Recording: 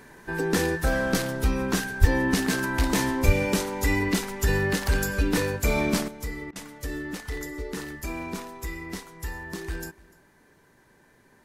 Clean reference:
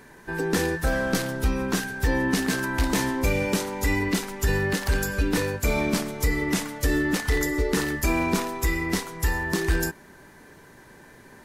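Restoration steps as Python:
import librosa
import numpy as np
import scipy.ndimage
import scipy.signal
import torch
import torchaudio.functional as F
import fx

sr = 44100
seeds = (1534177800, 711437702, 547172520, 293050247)

y = fx.highpass(x, sr, hz=140.0, slope=24, at=(2.0, 2.12), fade=0.02)
y = fx.highpass(y, sr, hz=140.0, slope=24, at=(3.25, 3.37), fade=0.02)
y = fx.fix_interpolate(y, sr, at_s=(6.51,), length_ms=46.0)
y = fx.fix_echo_inverse(y, sr, delay_ms=296, level_db=-23.5)
y = fx.gain(y, sr, db=fx.steps((0.0, 0.0), (6.08, 10.0)))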